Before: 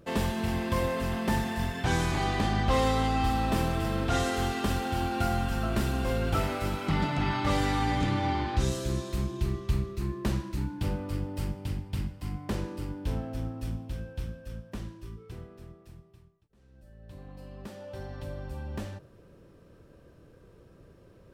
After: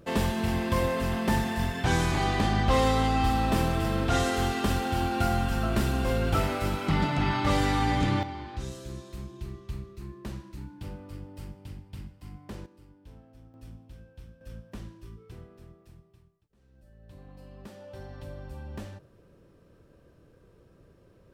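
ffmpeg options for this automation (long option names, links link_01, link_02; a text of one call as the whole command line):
ffmpeg -i in.wav -af "asetnsamples=nb_out_samples=441:pad=0,asendcmd='8.23 volume volume -9dB;12.66 volume volume -19dB;13.54 volume volume -12dB;14.41 volume volume -3dB',volume=2dB" out.wav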